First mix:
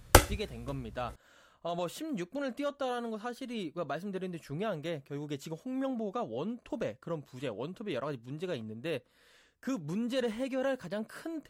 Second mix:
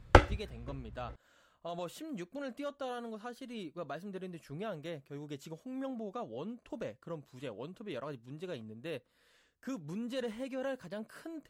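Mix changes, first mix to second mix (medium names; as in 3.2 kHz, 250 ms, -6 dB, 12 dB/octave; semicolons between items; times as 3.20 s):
speech -5.5 dB; background: add low-pass 2.6 kHz 12 dB/octave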